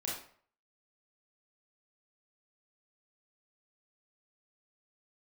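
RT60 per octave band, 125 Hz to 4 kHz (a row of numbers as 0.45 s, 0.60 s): 0.50 s, 0.50 s, 0.55 s, 0.55 s, 0.45 s, 0.40 s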